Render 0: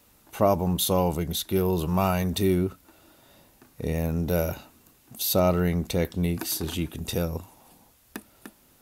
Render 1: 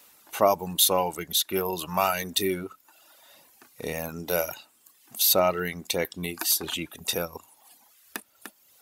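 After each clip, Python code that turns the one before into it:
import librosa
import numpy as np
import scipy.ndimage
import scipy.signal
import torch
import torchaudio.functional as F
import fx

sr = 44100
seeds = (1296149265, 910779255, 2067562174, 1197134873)

y = fx.dereverb_blind(x, sr, rt60_s=1.0)
y = fx.highpass(y, sr, hz=950.0, slope=6)
y = y * 10.0 ** (6.5 / 20.0)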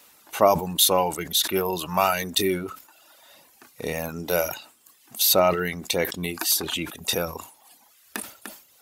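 y = fx.high_shelf(x, sr, hz=9900.0, db=-3.5)
y = fx.sustainer(y, sr, db_per_s=120.0)
y = y * 10.0 ** (3.0 / 20.0)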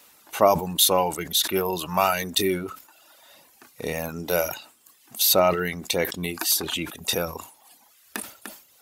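y = x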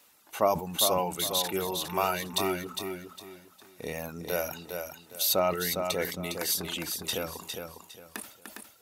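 y = fx.echo_feedback(x, sr, ms=407, feedback_pct=28, wet_db=-6)
y = y * 10.0 ** (-7.0 / 20.0)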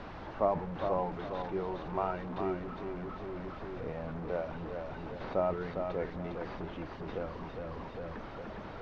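y = fx.delta_mod(x, sr, bps=32000, step_db=-29.5)
y = fx.dmg_noise_colour(y, sr, seeds[0], colour='pink', level_db=-42.0)
y = scipy.signal.sosfilt(scipy.signal.butter(2, 1100.0, 'lowpass', fs=sr, output='sos'), y)
y = y * 10.0 ** (-3.5 / 20.0)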